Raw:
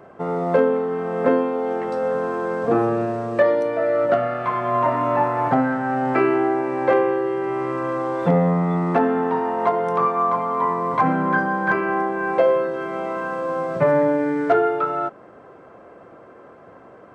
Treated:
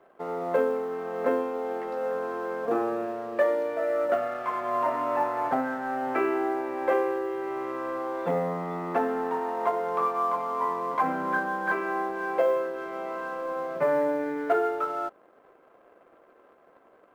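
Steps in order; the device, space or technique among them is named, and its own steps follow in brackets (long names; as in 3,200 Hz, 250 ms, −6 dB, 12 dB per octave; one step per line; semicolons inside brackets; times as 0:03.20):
phone line with mismatched companding (band-pass filter 300–3,500 Hz; mu-law and A-law mismatch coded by A)
level −6 dB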